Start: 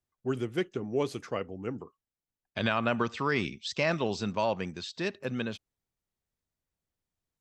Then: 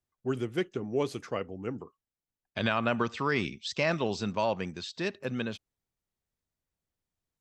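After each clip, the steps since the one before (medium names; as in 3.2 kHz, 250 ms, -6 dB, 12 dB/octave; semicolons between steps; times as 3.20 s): no audible change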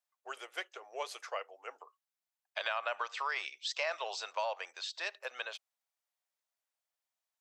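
steep high-pass 590 Hz 36 dB/octave; compression 2.5:1, threshold -33 dBFS, peak gain reduction 6 dB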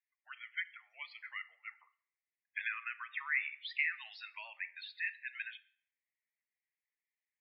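ladder band-pass 2.2 kHz, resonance 65%; loudest bins only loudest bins 32; reverberation RT60 0.70 s, pre-delay 7 ms, DRR 14 dB; trim +8 dB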